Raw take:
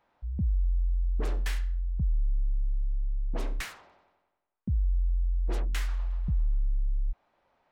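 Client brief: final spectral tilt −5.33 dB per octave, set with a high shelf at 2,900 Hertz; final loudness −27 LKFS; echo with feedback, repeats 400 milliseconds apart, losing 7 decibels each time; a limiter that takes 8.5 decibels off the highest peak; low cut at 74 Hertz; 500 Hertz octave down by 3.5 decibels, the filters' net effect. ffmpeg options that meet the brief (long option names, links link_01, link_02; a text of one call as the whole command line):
ffmpeg -i in.wav -af "highpass=74,equalizer=frequency=500:width_type=o:gain=-4.5,highshelf=frequency=2900:gain=-3,alimiter=level_in=7.5dB:limit=-24dB:level=0:latency=1,volume=-7.5dB,aecho=1:1:400|800|1200|1600|2000:0.447|0.201|0.0905|0.0407|0.0183,volume=15.5dB" out.wav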